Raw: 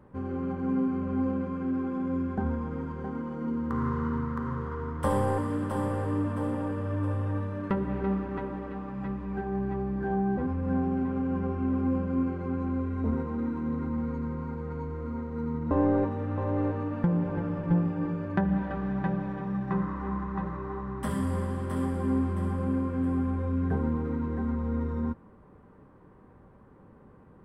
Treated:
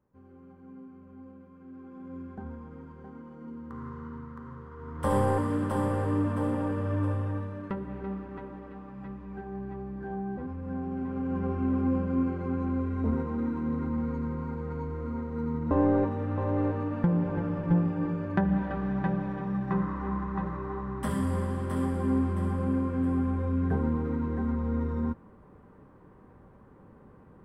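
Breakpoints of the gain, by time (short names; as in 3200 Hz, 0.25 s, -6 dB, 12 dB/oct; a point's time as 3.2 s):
1.52 s -20 dB
2.19 s -11 dB
4.73 s -11 dB
5.15 s +1.5 dB
7.01 s +1.5 dB
7.84 s -7 dB
10.77 s -7 dB
11.51 s +0.5 dB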